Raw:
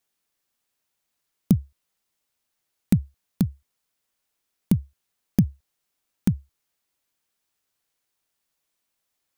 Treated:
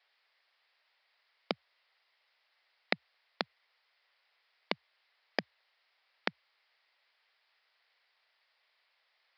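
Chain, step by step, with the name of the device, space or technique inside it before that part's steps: musical greeting card (downsampling 11025 Hz; HPF 550 Hz 24 dB/oct; bell 2000 Hz +7 dB 0.45 oct); gain +8.5 dB

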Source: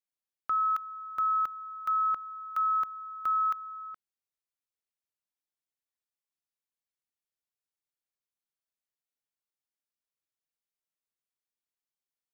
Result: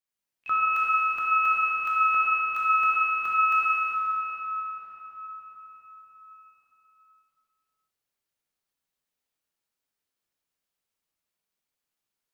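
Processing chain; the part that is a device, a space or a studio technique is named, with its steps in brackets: shimmer-style reverb (harmoniser +12 st -11 dB; reverb RT60 5.2 s, pre-delay 7 ms, DRR -8 dB)

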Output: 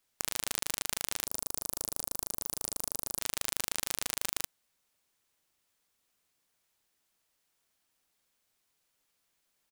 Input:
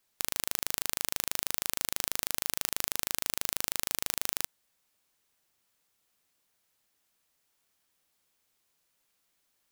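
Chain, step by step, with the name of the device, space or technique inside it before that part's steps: 1.27–3.19 band shelf 3400 Hz -14.5 dB 2.4 oct; octave pedal (harmoniser -12 st -6 dB); gain -3 dB

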